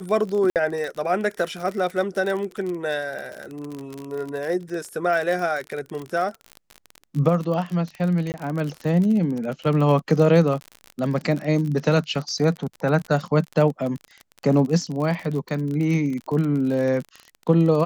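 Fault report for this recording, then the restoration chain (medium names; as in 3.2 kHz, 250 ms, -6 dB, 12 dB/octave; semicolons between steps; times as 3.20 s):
crackle 42 per s -27 dBFS
0.50–0.56 s: dropout 58 ms
8.32–8.34 s: dropout 19 ms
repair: de-click; interpolate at 0.50 s, 58 ms; interpolate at 8.32 s, 19 ms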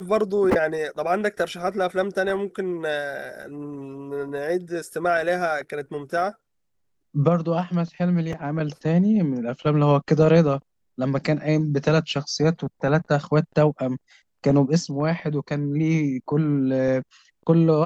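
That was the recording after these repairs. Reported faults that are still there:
nothing left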